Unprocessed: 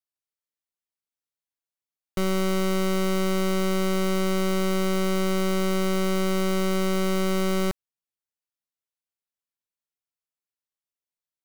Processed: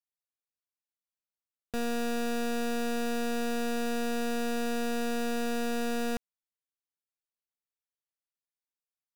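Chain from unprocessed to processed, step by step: tape speed +25%; trim -7 dB

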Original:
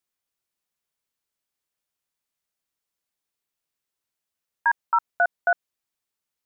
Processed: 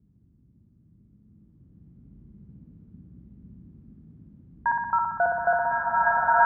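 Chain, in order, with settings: band noise 42–240 Hz -63 dBFS; low-pass 1.1 kHz 12 dB/octave; flutter echo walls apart 10.7 m, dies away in 1 s; swelling reverb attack 2130 ms, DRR -11.5 dB

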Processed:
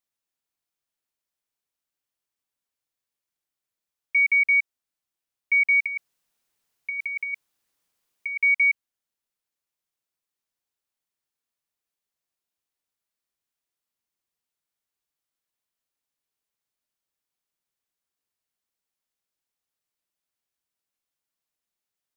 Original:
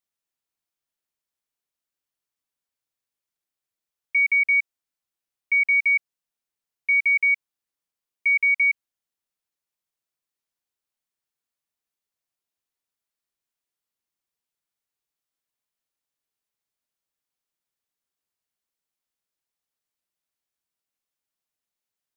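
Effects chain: 5.86–8.38 s: compressor with a negative ratio -26 dBFS, ratio -0.5

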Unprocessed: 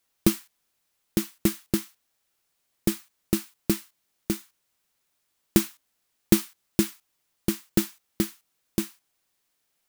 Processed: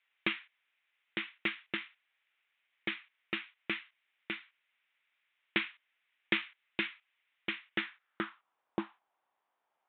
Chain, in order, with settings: resampled via 8 kHz; band-pass sweep 2.2 kHz -> 870 Hz, 7.73–8.64 s; trim +8 dB

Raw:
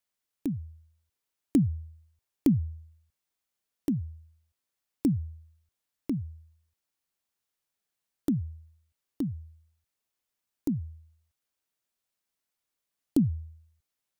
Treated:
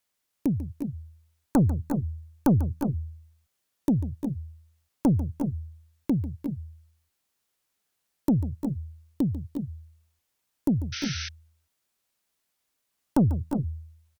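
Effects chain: Chebyshev shaper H 4 -15 dB, 5 -13 dB, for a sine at -12 dBFS; multi-tap echo 144/349/363 ms -14.5/-11.5/-9 dB; painted sound noise, 10.92–11.29 s, 1.3–6.2 kHz -35 dBFS

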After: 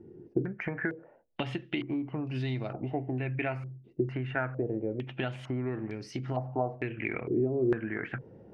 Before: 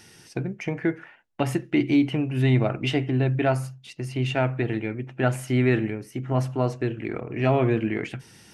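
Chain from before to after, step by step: compression 5:1, threshold -32 dBFS, peak gain reduction 15 dB; step-sequenced low-pass 2.2 Hz 370–4800 Hz

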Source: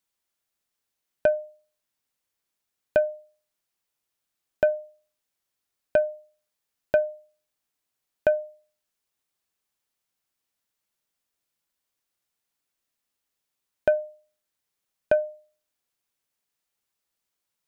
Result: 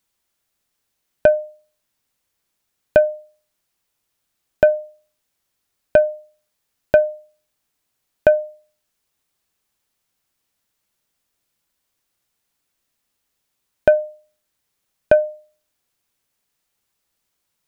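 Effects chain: bass shelf 200 Hz +5 dB; trim +7.5 dB

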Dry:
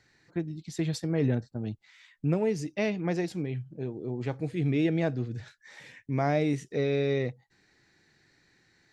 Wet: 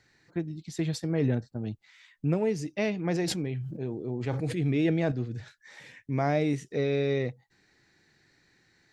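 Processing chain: 3.02–5.12 s: decay stretcher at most 35 dB/s

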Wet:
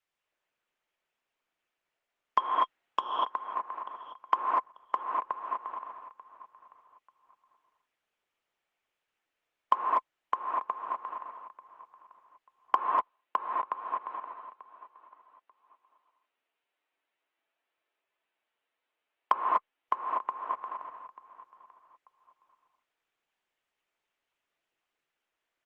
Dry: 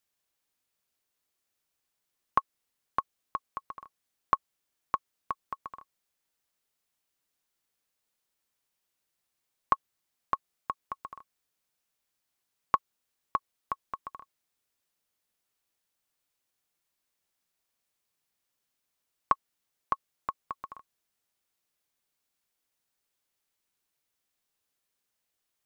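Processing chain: 2.38–2.99 s: square wave that keeps the level; feedback delay 889 ms, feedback 25%, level -18 dB; mistuned SSB -55 Hz 390–3200 Hz; gated-style reverb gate 270 ms rising, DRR -2 dB; in parallel at -7 dB: hard clipper -18 dBFS, distortion -13 dB; on the sum: trim -2.5 dB; Opus 16 kbps 48 kHz

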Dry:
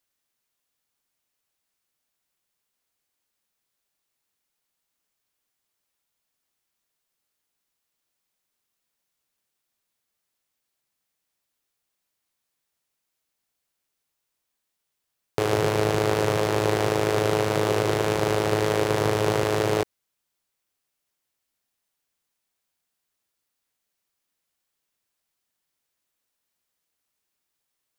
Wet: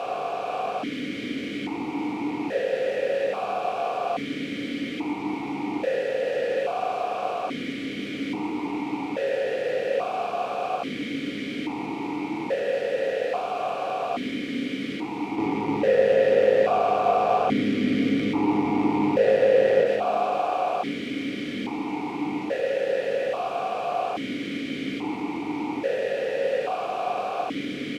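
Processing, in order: spectral levelling over time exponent 0.2; gate -30 dBFS, range -6 dB; compression 1.5:1, threshold -31 dBFS, peak gain reduction 6.5 dB; waveshaping leveller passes 5; frequency-shifting echo 461 ms, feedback 58%, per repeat +100 Hz, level -7 dB; simulated room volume 360 m³, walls furnished, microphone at 1.8 m; stepped vowel filter 1.2 Hz

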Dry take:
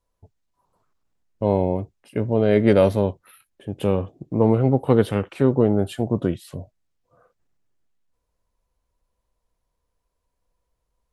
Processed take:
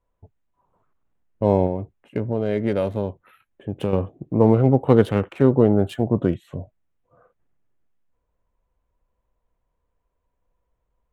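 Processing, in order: local Wiener filter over 9 samples; 1.66–3.93 s: compression 3:1, threshold -23 dBFS, peak gain reduction 9.5 dB; trim +2 dB

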